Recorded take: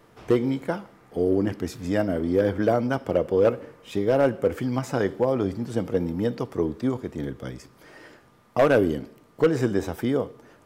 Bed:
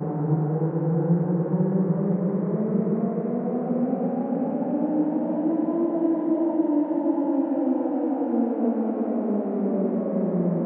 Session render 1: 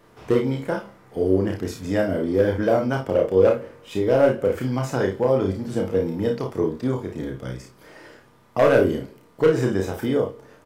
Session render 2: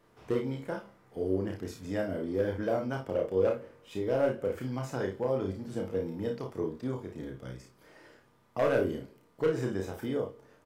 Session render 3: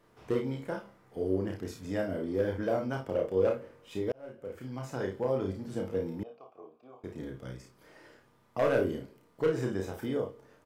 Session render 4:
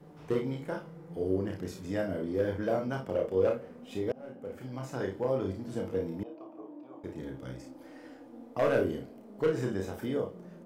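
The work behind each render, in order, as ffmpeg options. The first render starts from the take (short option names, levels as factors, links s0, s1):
-filter_complex "[0:a]asplit=2[s0][s1];[s1]adelay=30,volume=0.355[s2];[s0][s2]amix=inputs=2:normalize=0,aecho=1:1:32|53:0.596|0.376"
-af "volume=0.299"
-filter_complex "[0:a]asettb=1/sr,asplit=3[s0][s1][s2];[s0]atrim=end=6.234[s3];[s1]atrim=start=6.23:end=7.04,asetpts=PTS-STARTPTS,afade=t=in:d=0.004:c=qsin,afade=t=out:st=0.806:d=0.004:c=qsin,asplit=3[s4][s5][s6];[s4]bandpass=f=730:t=q:w=8,volume=1[s7];[s5]bandpass=f=1090:t=q:w=8,volume=0.501[s8];[s6]bandpass=f=2440:t=q:w=8,volume=0.355[s9];[s7][s8][s9]amix=inputs=3:normalize=0[s10];[s2]atrim=start=7.036[s11];[s3][s10]acrossfade=d=0.004:c1=hsin:c2=qsin[s12];[s12][s11]acrossfade=d=0.004:c1=qsin:c2=hsin,asplit=2[s13][s14];[s13]atrim=end=4.12,asetpts=PTS-STARTPTS,afade=t=out:st=4.116:d=0.004:c=hsin[s15];[s14]atrim=start=4.12,asetpts=PTS-STARTPTS,afade=t=in:d=1.05[s16];[s15][s16]concat=n=2:v=0:a=1"
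-filter_complex "[1:a]volume=0.0531[s0];[0:a][s0]amix=inputs=2:normalize=0"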